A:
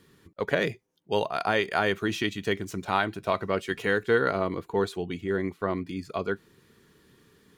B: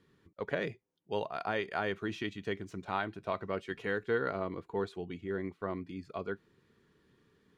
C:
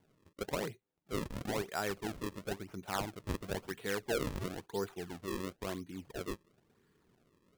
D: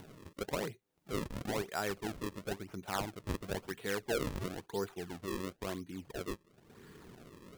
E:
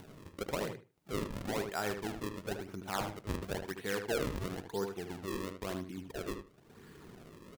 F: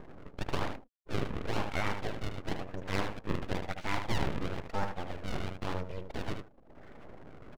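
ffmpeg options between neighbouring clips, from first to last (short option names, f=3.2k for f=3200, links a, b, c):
-af "aemphasis=mode=reproduction:type=50fm,volume=-8.5dB"
-af "acrusher=samples=34:mix=1:aa=0.000001:lfo=1:lforange=54.4:lforate=0.98,volume=-2.5dB"
-af "acompressor=mode=upward:threshold=-39dB:ratio=2.5"
-filter_complex "[0:a]asplit=2[a][b];[b]adelay=76,lowpass=f=2.9k:p=1,volume=-6.5dB,asplit=2[c][d];[d]adelay=76,lowpass=f=2.9k:p=1,volume=0.18,asplit=2[e][f];[f]adelay=76,lowpass=f=2.9k:p=1,volume=0.18[g];[a][c][e][g]amix=inputs=4:normalize=0"
-filter_complex "[0:a]acrossover=split=2900[a][b];[b]acompressor=threshold=-54dB:ratio=4:attack=1:release=60[c];[a][c]amix=inputs=2:normalize=0,afftfilt=real='re*gte(hypot(re,im),0.00224)':imag='im*gte(hypot(re,im),0.00224)':win_size=1024:overlap=0.75,aeval=exprs='abs(val(0))':c=same,volume=6dB"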